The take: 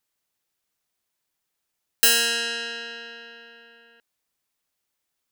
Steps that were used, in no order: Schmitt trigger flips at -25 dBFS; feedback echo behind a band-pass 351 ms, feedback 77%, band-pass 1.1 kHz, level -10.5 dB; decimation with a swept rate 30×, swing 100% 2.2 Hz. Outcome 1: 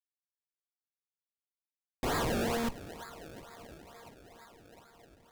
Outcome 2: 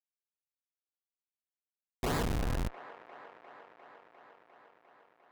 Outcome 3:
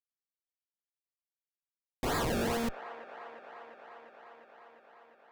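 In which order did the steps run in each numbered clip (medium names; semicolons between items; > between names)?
Schmitt trigger > feedback echo behind a band-pass > decimation with a swept rate; decimation with a swept rate > Schmitt trigger > feedback echo behind a band-pass; Schmitt trigger > decimation with a swept rate > feedback echo behind a band-pass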